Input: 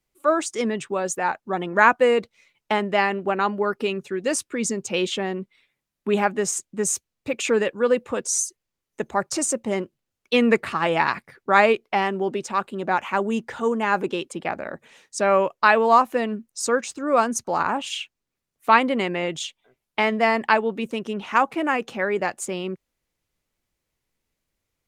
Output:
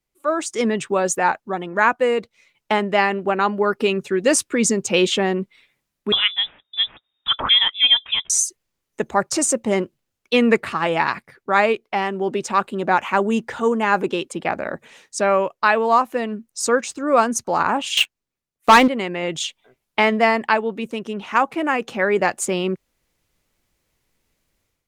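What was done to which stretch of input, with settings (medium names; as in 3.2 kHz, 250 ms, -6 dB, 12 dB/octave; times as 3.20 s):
6.12–8.30 s: frequency inversion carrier 3.7 kHz
17.97–18.88 s: waveshaping leveller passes 3
whole clip: level rider; trim -2.5 dB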